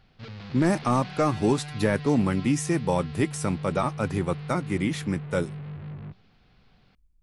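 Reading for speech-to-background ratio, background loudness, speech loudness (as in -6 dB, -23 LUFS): 11.5 dB, -38.0 LUFS, -26.5 LUFS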